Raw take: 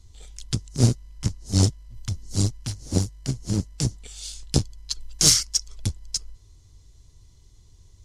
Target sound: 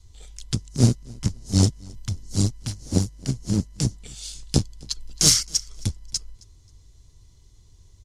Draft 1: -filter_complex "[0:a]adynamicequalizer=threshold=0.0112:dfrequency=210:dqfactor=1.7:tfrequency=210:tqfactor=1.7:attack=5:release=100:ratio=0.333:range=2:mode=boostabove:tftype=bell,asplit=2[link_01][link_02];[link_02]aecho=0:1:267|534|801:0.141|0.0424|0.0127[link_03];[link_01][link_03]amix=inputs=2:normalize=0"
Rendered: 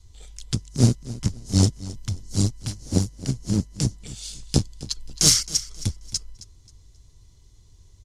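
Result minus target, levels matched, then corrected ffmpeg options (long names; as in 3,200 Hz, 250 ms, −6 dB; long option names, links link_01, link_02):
echo-to-direct +8 dB
-filter_complex "[0:a]adynamicequalizer=threshold=0.0112:dfrequency=210:dqfactor=1.7:tfrequency=210:tqfactor=1.7:attack=5:release=100:ratio=0.333:range=2:mode=boostabove:tftype=bell,asplit=2[link_01][link_02];[link_02]aecho=0:1:267|534:0.0562|0.0169[link_03];[link_01][link_03]amix=inputs=2:normalize=0"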